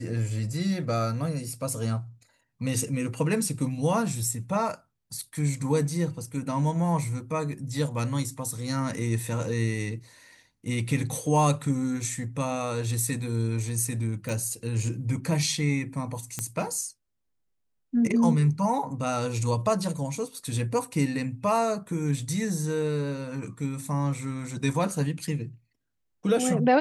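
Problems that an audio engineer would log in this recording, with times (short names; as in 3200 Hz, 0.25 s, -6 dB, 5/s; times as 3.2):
14.29 pop
16.39 pop -14 dBFS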